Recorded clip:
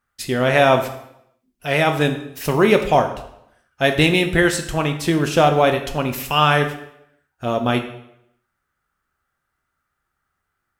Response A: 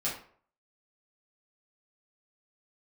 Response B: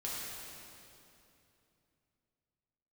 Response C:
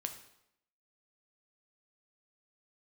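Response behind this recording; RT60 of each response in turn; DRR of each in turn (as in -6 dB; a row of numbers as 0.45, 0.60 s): C; 0.55, 2.9, 0.80 s; -8.0, -7.0, 5.5 dB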